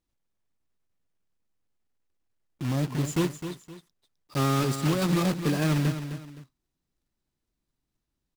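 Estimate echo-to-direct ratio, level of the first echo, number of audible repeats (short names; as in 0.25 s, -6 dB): -9.5 dB, -10.0 dB, 2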